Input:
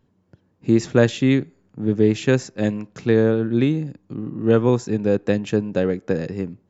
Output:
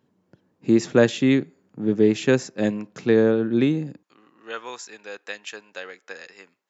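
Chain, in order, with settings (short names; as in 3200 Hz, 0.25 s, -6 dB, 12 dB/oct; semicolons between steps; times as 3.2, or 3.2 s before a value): HPF 170 Hz 12 dB/oct, from 4.03 s 1400 Hz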